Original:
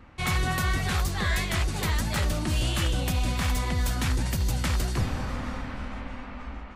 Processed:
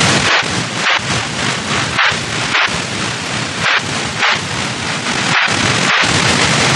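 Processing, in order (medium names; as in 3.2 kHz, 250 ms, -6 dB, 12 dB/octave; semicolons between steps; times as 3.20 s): trance gate "xx.xxx.xxxxx" 107 bpm -60 dB; ring modulator 460 Hz; high-order bell 840 Hz +13 dB 2.6 oct; in parallel at -9 dB: sine folder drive 17 dB, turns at -21.5 dBFS; on the sum: noise-vocoded speech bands 1; band-passed feedback delay 194 ms, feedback 62%, band-pass 1.7 kHz, level -6.5 dB; compressor with a negative ratio -40 dBFS, ratio -1; spectral gate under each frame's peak -15 dB strong; tone controls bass +12 dB, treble -8 dB; pre-echo 60 ms -15 dB; loudness maximiser +28.5 dB; trim -1 dB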